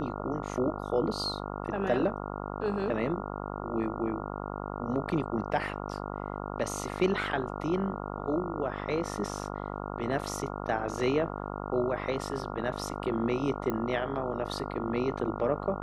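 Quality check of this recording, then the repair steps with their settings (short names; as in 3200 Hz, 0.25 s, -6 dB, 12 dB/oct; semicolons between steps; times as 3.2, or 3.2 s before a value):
buzz 50 Hz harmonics 28 -37 dBFS
13.7 pop -19 dBFS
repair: de-click; de-hum 50 Hz, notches 28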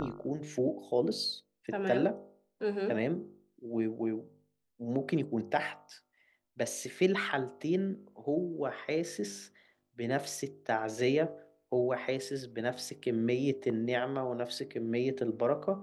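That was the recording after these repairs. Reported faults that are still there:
none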